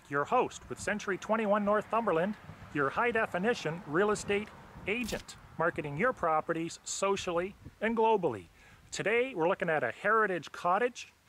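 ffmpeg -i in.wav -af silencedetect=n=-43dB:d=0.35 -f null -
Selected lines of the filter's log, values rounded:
silence_start: 8.44
silence_end: 8.93 | silence_duration: 0.48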